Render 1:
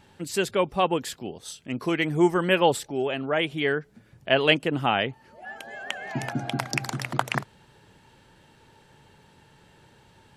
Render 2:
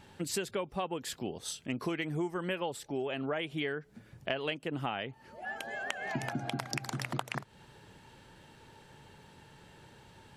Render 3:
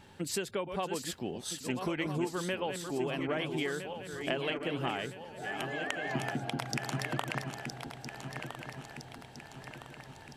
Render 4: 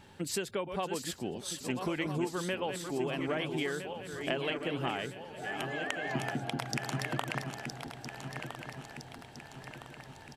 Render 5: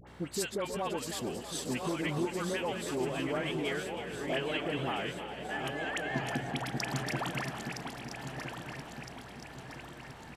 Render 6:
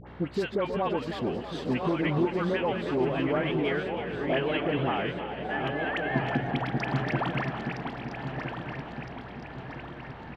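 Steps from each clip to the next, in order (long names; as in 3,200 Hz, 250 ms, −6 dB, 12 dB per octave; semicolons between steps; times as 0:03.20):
downward compressor 12 to 1, threshold −31 dBFS, peak gain reduction 17.5 dB
feedback delay that plays each chunk backwards 656 ms, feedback 71%, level −7 dB
single-tap delay 863 ms −21.5 dB
hum with harmonics 60 Hz, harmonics 38, −55 dBFS −3 dB per octave; all-pass dispersion highs, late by 72 ms, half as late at 1,100 Hz; echo with shifted repeats 320 ms, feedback 60%, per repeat +42 Hz, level −10.5 dB
high-frequency loss of the air 340 metres; level +7.5 dB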